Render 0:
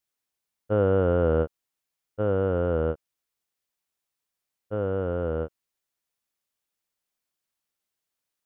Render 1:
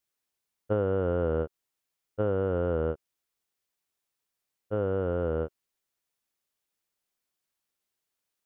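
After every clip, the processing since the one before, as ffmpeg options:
ffmpeg -i in.wav -af "equalizer=frequency=390:width_type=o:width=0.34:gain=2.5,acompressor=threshold=-23dB:ratio=6" out.wav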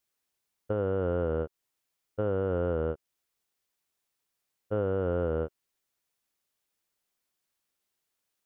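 ffmpeg -i in.wav -af "alimiter=limit=-21.5dB:level=0:latency=1:release=257,volume=2dB" out.wav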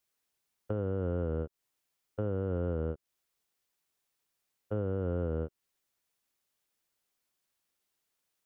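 ffmpeg -i in.wav -filter_complex "[0:a]acrossover=split=320[link_01][link_02];[link_02]acompressor=threshold=-39dB:ratio=4[link_03];[link_01][link_03]amix=inputs=2:normalize=0" out.wav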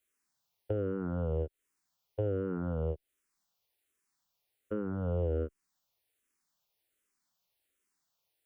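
ffmpeg -i in.wav -filter_complex "[0:a]asplit=2[link_01][link_02];[link_02]afreqshift=-1.3[link_03];[link_01][link_03]amix=inputs=2:normalize=1,volume=3dB" out.wav

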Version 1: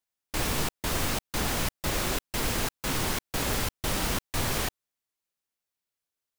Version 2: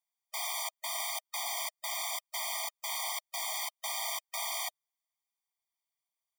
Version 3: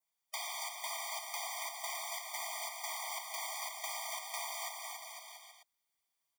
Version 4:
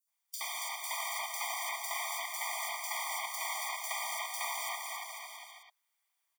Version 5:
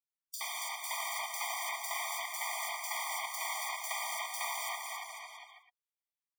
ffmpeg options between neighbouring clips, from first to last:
ffmpeg -i in.wav -filter_complex "[0:a]acrossover=split=410|2500[link_01][link_02][link_03];[link_02]alimiter=level_in=7.5dB:limit=-24dB:level=0:latency=1,volume=-7.5dB[link_04];[link_01][link_04][link_03]amix=inputs=3:normalize=0,afftfilt=real='re*eq(mod(floor(b*sr/1024/620),2),1)':imag='im*eq(mod(floor(b*sr/1024/620),2),1)':win_size=1024:overlap=0.75" out.wav
ffmpeg -i in.wav -filter_complex "[0:a]acrossover=split=1100|7300[link_01][link_02][link_03];[link_01]acompressor=threshold=-52dB:ratio=4[link_04];[link_02]acompressor=threshold=-44dB:ratio=4[link_05];[link_03]acompressor=threshold=-52dB:ratio=4[link_06];[link_04][link_05][link_06]amix=inputs=3:normalize=0,asplit=2[link_07][link_08];[link_08]aecho=0:1:280|504|683.2|826.6|941.2:0.631|0.398|0.251|0.158|0.1[link_09];[link_07][link_09]amix=inputs=2:normalize=0,adynamicequalizer=threshold=0.00158:dfrequency=3500:dqfactor=1.3:tfrequency=3500:tqfactor=1.3:attack=5:release=100:ratio=0.375:range=3:mode=cutabove:tftype=bell,volume=3dB" out.wav
ffmpeg -i in.wav -filter_complex "[0:a]highpass=850,acrossover=split=3300[link_01][link_02];[link_01]dynaudnorm=framelen=520:gausssize=3:maxgain=3.5dB[link_03];[link_03][link_02]amix=inputs=2:normalize=0,acrossover=split=4500[link_04][link_05];[link_04]adelay=70[link_06];[link_06][link_05]amix=inputs=2:normalize=0,volume=3.5dB" out.wav
ffmpeg -i in.wav -af "afftdn=noise_reduction=20:noise_floor=-51" out.wav

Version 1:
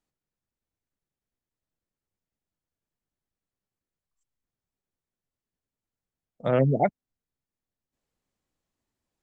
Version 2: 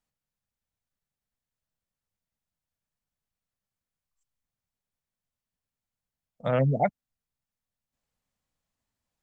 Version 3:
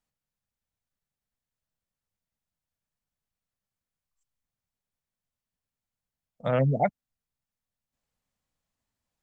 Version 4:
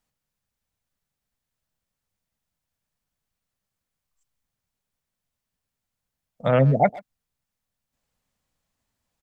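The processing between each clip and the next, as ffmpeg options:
ffmpeg -i in.wav -af "equalizer=frequency=350:width=2.1:gain=-10.5" out.wav
ffmpeg -i in.wav -af anull out.wav
ffmpeg -i in.wav -filter_complex "[0:a]asplit=2[link_01][link_02];[link_02]adelay=130,highpass=300,lowpass=3400,asoftclip=type=hard:threshold=-21dB,volume=-18dB[link_03];[link_01][link_03]amix=inputs=2:normalize=0,volume=6dB" out.wav

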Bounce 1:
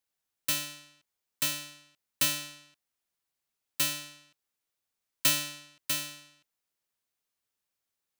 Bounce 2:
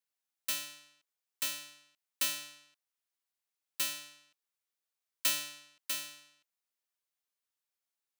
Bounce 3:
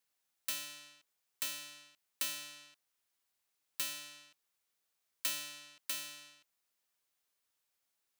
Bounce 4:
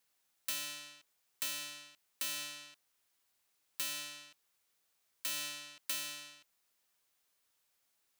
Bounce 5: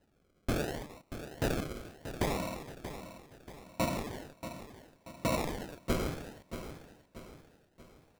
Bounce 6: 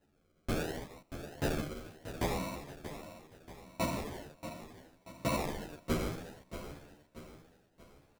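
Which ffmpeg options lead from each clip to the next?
ffmpeg -i in.wav -af "highpass=frequency=560:poles=1,volume=-5dB" out.wav
ffmpeg -i in.wav -af "acompressor=threshold=-50dB:ratio=2,volume=6.5dB" out.wav
ffmpeg -i in.wav -af "alimiter=level_in=4.5dB:limit=-24dB:level=0:latency=1:release=203,volume=-4.5dB,volume=5dB" out.wav
ffmpeg -i in.wav -filter_complex "[0:a]acrusher=samples=38:mix=1:aa=0.000001:lfo=1:lforange=22.8:lforate=0.71,asplit=2[link_01][link_02];[link_02]aecho=0:1:633|1266|1899|2532|3165:0.282|0.124|0.0546|0.024|0.0106[link_03];[link_01][link_03]amix=inputs=2:normalize=0,volume=7dB" out.wav
ffmpeg -i in.wav -filter_complex "[0:a]asplit=2[link_01][link_02];[link_02]adelay=11.4,afreqshift=0.74[link_03];[link_01][link_03]amix=inputs=2:normalize=1,volume=1.5dB" out.wav

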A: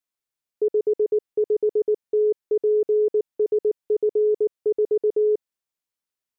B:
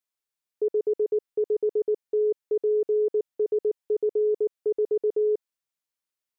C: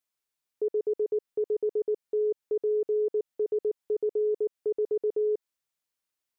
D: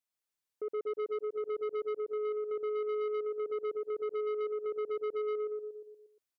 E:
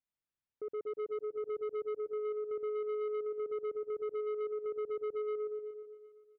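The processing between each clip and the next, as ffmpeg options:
ffmpeg -i in.wav -af "lowshelf=frequency=470:gain=-4.5,volume=-1dB" out.wav
ffmpeg -i in.wav -af "alimiter=level_in=0.5dB:limit=-24dB:level=0:latency=1:release=109,volume=-0.5dB,volume=2dB" out.wav
ffmpeg -i in.wav -filter_complex "[0:a]asplit=2[link_01][link_02];[link_02]aecho=0:1:118|236|354|472|590|708|826:0.631|0.347|0.191|0.105|0.0577|0.0318|0.0175[link_03];[link_01][link_03]amix=inputs=2:normalize=0,asoftclip=type=tanh:threshold=-26dB,volume=-5.5dB" out.wav
ffmpeg -i in.wav -af "bass=frequency=250:gain=9,treble=frequency=4000:gain=-12,aecho=1:1:382|764|1146:0.126|0.0453|0.0163,volume=-4.5dB" out.wav

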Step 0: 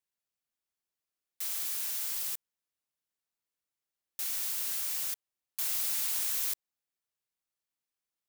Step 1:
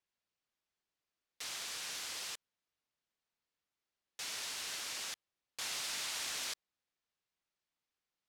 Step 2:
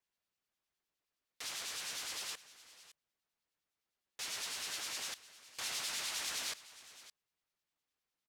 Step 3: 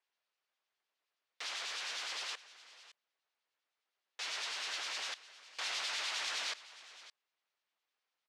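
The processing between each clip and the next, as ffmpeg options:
ffmpeg -i in.wav -af "lowpass=5200,volume=3dB" out.wav
ffmpeg -i in.wav -filter_complex "[0:a]aecho=1:1:563:0.141,acrossover=split=2300[link_01][link_02];[link_01]aeval=exprs='val(0)*(1-0.5/2+0.5/2*cos(2*PI*9.8*n/s))':channel_layout=same[link_03];[link_02]aeval=exprs='val(0)*(1-0.5/2-0.5/2*cos(2*PI*9.8*n/s))':channel_layout=same[link_04];[link_03][link_04]amix=inputs=2:normalize=0,volume=2.5dB" out.wav
ffmpeg -i in.wav -af "highpass=510,lowpass=4500,volume=4.5dB" out.wav

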